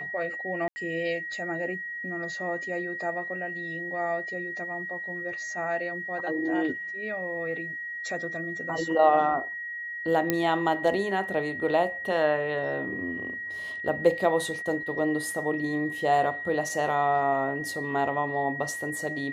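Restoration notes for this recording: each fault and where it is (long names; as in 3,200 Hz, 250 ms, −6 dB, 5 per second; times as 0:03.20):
whistle 1,900 Hz −33 dBFS
0:00.68–0:00.76: drop-out 80 ms
0:10.30: click −9 dBFS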